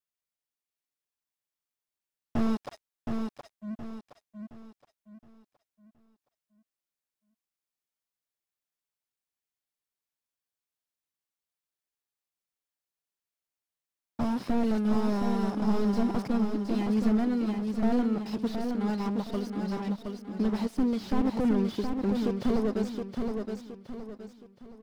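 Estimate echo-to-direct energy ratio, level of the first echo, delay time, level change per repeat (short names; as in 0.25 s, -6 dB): -4.5 dB, -5.0 dB, 0.719 s, -8.5 dB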